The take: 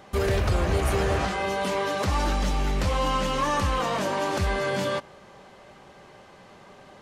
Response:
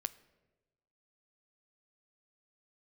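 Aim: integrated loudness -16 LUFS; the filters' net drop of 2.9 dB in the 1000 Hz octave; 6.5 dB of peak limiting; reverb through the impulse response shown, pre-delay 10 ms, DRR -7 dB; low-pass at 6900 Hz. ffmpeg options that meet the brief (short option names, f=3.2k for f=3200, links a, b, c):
-filter_complex "[0:a]lowpass=6.9k,equalizer=f=1k:t=o:g=-3.5,alimiter=limit=-21dB:level=0:latency=1,asplit=2[a][b];[1:a]atrim=start_sample=2205,adelay=10[c];[b][c]afir=irnorm=-1:irlink=0,volume=8dB[d];[a][d]amix=inputs=2:normalize=0,volume=6dB"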